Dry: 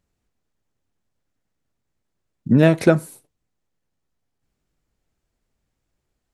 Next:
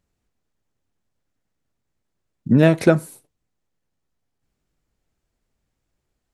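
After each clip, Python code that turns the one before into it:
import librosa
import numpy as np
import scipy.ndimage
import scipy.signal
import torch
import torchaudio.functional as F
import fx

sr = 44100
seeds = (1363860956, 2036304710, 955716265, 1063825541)

y = x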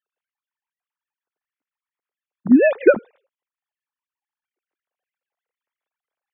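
y = fx.sine_speech(x, sr)
y = y * 10.0 ** (1.0 / 20.0)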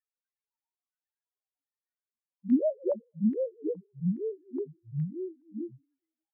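y = fx.spec_topn(x, sr, count=1)
y = fx.echo_pitch(y, sr, ms=247, semitones=-3, count=3, db_per_echo=-3.0)
y = fx.filter_lfo_lowpass(y, sr, shape='square', hz=1.2, low_hz=930.0, high_hz=1900.0, q=4.5)
y = y * 10.0 ** (-6.5 / 20.0)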